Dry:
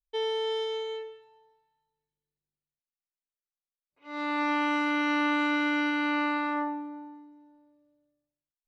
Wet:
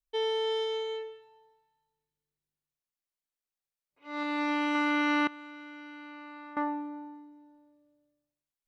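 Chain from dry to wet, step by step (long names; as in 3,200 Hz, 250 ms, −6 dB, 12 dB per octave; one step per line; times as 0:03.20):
0:04.23–0:04.75: parametric band 1,200 Hz −5 dB 1.5 octaves
0:05.27–0:06.57: output level in coarse steps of 23 dB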